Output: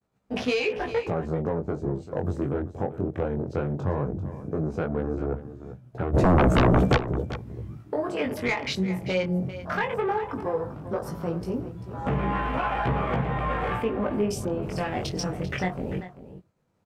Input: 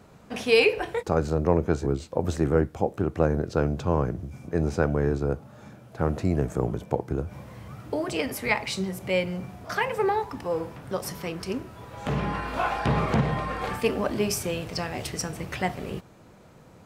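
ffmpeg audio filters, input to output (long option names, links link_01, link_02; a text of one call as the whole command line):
ffmpeg -i in.wav -filter_complex "[0:a]asettb=1/sr,asplit=3[link_01][link_02][link_03];[link_01]atrim=end=7.754[link_04];[link_02]atrim=start=7.75:end=8.2,asetpts=PTS-STARTPTS,afade=type=in:duration=0.004:curve=qsin,afade=type=out:start_time=0.446:duration=0.004:curve=qsin,highpass=frequency=350:poles=1[link_05];[link_03]atrim=start=8.196[link_06];[link_04][link_05]acrossfade=duration=0.004:curve1=hsin:curve2=qsin[link_07];[link_07][link_06]acrossfade=duration=0.004:curve1=qsin:curve2=hsin,agate=range=-33dB:threshold=-43dB:ratio=3:detection=peak,afwtdn=0.0158,asplit=3[link_08][link_09][link_10];[link_08]afade=type=out:start_time=13.81:duration=0.02[link_11];[link_09]highshelf=frequency=2000:gain=-10,afade=type=in:start_time=13.81:duration=0.02,afade=type=out:start_time=14.62:duration=0.02[link_12];[link_10]afade=type=in:start_time=14.62:duration=0.02[link_13];[link_11][link_12][link_13]amix=inputs=3:normalize=0,acompressor=threshold=-27dB:ratio=6,asoftclip=type=tanh:threshold=-20dB,flanger=delay=15.5:depth=6.8:speed=0.16,asplit=3[link_14][link_15][link_16];[link_14]afade=type=out:start_time=6.13:duration=0.02[link_17];[link_15]aeval=exprs='0.075*sin(PI/2*5.01*val(0)/0.075)':channel_layout=same,afade=type=in:start_time=6.13:duration=0.02,afade=type=out:start_time=6.96:duration=0.02[link_18];[link_16]afade=type=in:start_time=6.96:duration=0.02[link_19];[link_17][link_18][link_19]amix=inputs=3:normalize=0,aecho=1:1:392:0.211,volume=8dB" out.wav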